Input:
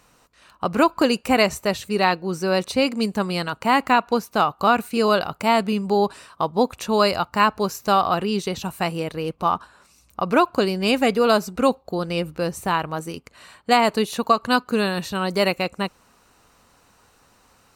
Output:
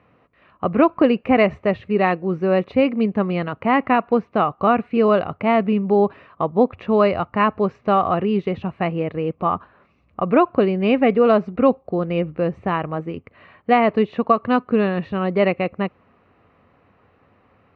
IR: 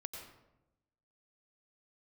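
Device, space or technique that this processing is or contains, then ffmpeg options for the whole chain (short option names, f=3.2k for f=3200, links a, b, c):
bass cabinet: -af "highpass=85,equalizer=f=92:t=q:w=4:g=6,equalizer=f=910:t=q:w=4:g=-8,equalizer=f=1.5k:t=q:w=4:g=-9,lowpass=f=2.2k:w=0.5412,lowpass=f=2.2k:w=1.3066,volume=4dB"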